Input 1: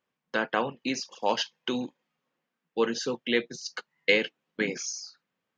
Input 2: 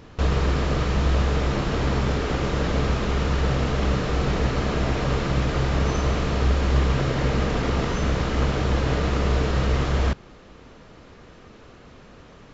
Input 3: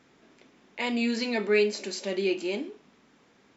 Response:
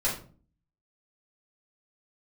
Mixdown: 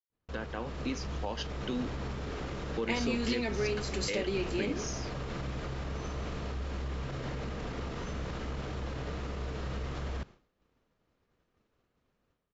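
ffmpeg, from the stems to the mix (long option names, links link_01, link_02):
-filter_complex "[0:a]lowshelf=frequency=390:gain=9,volume=-11.5dB[link_01];[1:a]alimiter=limit=-18dB:level=0:latency=1:release=46,adelay=100,volume=-15.5dB[link_02];[2:a]acompressor=threshold=-32dB:ratio=6,adelay=2100,volume=1.5dB[link_03];[link_01][link_02]amix=inputs=2:normalize=0,dynaudnorm=framelen=490:gausssize=3:maxgain=4.5dB,alimiter=limit=-24dB:level=0:latency=1:release=204,volume=0dB[link_04];[link_03][link_04]amix=inputs=2:normalize=0,agate=range=-33dB:threshold=-45dB:ratio=3:detection=peak"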